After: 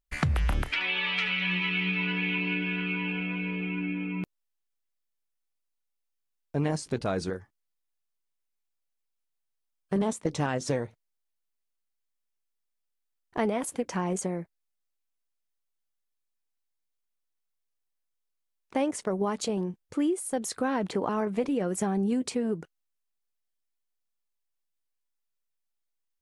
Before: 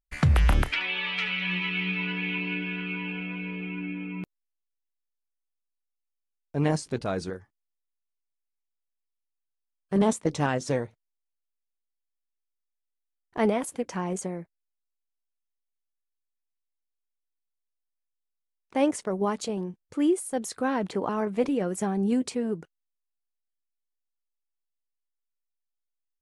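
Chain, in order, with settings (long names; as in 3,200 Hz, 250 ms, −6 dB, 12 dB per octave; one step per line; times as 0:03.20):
downward compressor 4 to 1, threshold −27 dBFS, peak gain reduction 9.5 dB
level +2.5 dB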